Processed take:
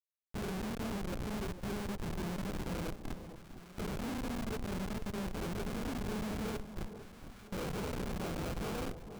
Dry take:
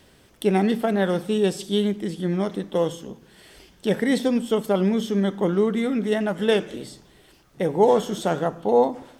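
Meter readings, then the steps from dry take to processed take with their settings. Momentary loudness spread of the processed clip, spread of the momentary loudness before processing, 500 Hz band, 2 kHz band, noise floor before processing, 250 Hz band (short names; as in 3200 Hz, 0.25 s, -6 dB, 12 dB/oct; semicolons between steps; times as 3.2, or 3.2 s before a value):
8 LU, 7 LU, -21.0 dB, -12.5 dB, -55 dBFS, -15.5 dB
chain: phase scrambler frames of 0.2 s; LPF 2500 Hz 24 dB/oct; low shelf 220 Hz +4.5 dB; de-hum 280.2 Hz, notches 27; compressor 10:1, threshold -31 dBFS, peak gain reduction 19 dB; Schmitt trigger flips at -33 dBFS; sample-rate reducer 1900 Hz, jitter 20%; on a send: echo with dull and thin repeats by turns 0.454 s, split 1000 Hz, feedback 69%, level -10 dB; on the sum: gain -2.5 dB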